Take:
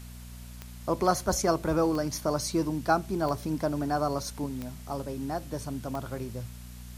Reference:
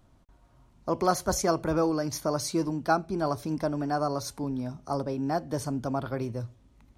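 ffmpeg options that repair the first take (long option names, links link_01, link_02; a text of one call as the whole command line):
ffmpeg -i in.wav -af "adeclick=threshold=4,bandreject=frequency=60.4:width_type=h:width=4,bandreject=frequency=120.8:width_type=h:width=4,bandreject=frequency=181.2:width_type=h:width=4,bandreject=frequency=241.6:width_type=h:width=4,afwtdn=0.0025,asetnsamples=nb_out_samples=441:pad=0,asendcmd='4.46 volume volume 4.5dB',volume=0dB" out.wav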